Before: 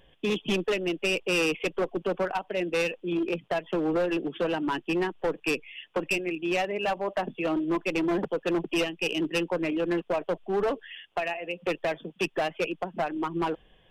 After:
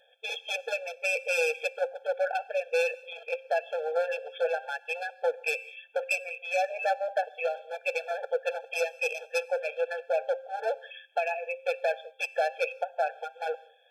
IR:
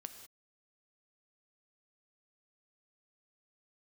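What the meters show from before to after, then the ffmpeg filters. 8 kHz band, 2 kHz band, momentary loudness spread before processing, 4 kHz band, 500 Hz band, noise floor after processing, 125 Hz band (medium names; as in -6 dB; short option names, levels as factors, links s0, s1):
-1.0 dB, +0.5 dB, 5 LU, -6.0 dB, -1.0 dB, -58 dBFS, under -40 dB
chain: -filter_complex "[0:a]bandreject=f=264.9:t=h:w=4,bandreject=f=529.8:t=h:w=4,bandreject=f=794.7:t=h:w=4,bandreject=f=1059.6:t=h:w=4,bandreject=f=1324.5:t=h:w=4,bandreject=f=1589.4:t=h:w=4,bandreject=f=1854.3:t=h:w=4,bandreject=f=2119.2:t=h:w=4,bandreject=f=2384.1:t=h:w=4,bandreject=f=2649:t=h:w=4,asplit=2[s0][s1];[1:a]atrim=start_sample=2205,afade=t=out:st=0.32:d=0.01,atrim=end_sample=14553,lowshelf=f=140:g=-10.5[s2];[s1][s2]afir=irnorm=-1:irlink=0,volume=0.473[s3];[s0][s3]amix=inputs=2:normalize=0,afftfilt=real='re*eq(mod(floor(b*sr/1024/450),2),1)':imag='im*eq(mod(floor(b*sr/1024/450),2),1)':win_size=1024:overlap=0.75"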